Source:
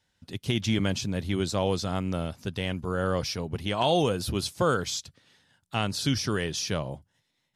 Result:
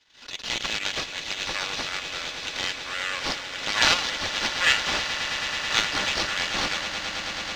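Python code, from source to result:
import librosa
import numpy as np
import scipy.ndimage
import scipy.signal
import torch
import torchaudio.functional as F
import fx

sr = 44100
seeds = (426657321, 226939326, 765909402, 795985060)

p1 = fx.self_delay(x, sr, depth_ms=0.43)
p2 = scipy.signal.sosfilt(scipy.signal.bessel(2, 2000.0, 'highpass', norm='mag', fs=sr, output='sos'), p1)
p3 = fx.peak_eq(p2, sr, hz=3900.0, db=13.0, octaves=3.0)
p4 = p3 + 0.44 * np.pad(p3, (int(3.5 * sr / 1000.0), 0))[:len(p3)]
p5 = fx.level_steps(p4, sr, step_db=22)
p6 = p4 + (p5 * 10.0 ** (1.5 / 20.0))
p7 = fx.sample_hold(p6, sr, seeds[0], rate_hz=10000.0, jitter_pct=0)
p8 = fx.air_absorb(p7, sr, metres=110.0)
p9 = p8 + fx.echo_swell(p8, sr, ms=108, loudest=8, wet_db=-14, dry=0)
p10 = fx.pre_swell(p9, sr, db_per_s=120.0)
y = p10 * 10.0 ** (-1.0 / 20.0)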